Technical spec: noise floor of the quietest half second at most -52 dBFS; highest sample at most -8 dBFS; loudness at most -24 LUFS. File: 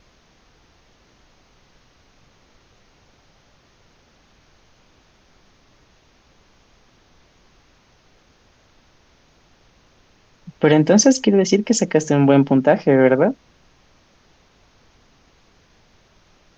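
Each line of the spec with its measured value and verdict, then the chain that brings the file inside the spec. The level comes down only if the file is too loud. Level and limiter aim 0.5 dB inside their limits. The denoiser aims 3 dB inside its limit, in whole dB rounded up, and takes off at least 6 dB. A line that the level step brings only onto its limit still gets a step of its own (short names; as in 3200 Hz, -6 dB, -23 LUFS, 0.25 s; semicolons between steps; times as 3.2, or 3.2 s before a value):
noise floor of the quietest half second -56 dBFS: OK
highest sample -2.5 dBFS: fail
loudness -15.5 LUFS: fail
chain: gain -9 dB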